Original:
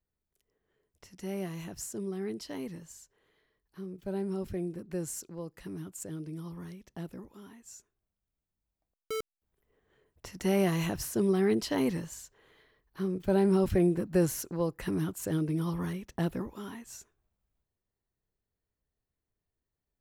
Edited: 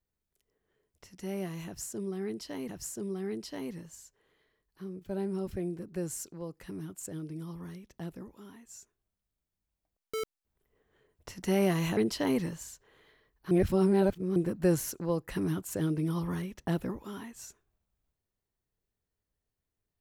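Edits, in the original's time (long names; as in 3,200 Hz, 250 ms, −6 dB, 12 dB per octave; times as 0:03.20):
0:01.66–0:02.69: repeat, 2 plays
0:10.94–0:11.48: remove
0:13.02–0:13.87: reverse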